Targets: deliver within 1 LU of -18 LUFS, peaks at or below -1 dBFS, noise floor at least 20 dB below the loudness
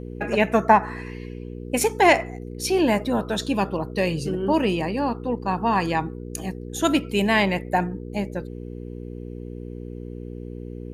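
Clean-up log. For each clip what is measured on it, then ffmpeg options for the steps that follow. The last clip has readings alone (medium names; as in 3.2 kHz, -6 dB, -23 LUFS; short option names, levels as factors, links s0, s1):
hum 60 Hz; highest harmonic 480 Hz; hum level -33 dBFS; loudness -23.0 LUFS; peak level -3.0 dBFS; loudness target -18.0 LUFS
-> -af "bandreject=f=60:t=h:w=4,bandreject=f=120:t=h:w=4,bandreject=f=180:t=h:w=4,bandreject=f=240:t=h:w=4,bandreject=f=300:t=h:w=4,bandreject=f=360:t=h:w=4,bandreject=f=420:t=h:w=4,bandreject=f=480:t=h:w=4"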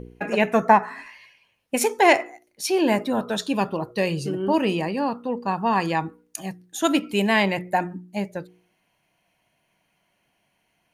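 hum not found; loudness -23.0 LUFS; peak level -3.0 dBFS; loudness target -18.0 LUFS
-> -af "volume=1.78,alimiter=limit=0.891:level=0:latency=1"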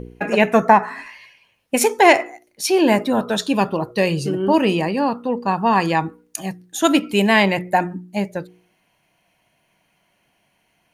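loudness -18.5 LUFS; peak level -1.0 dBFS; noise floor -66 dBFS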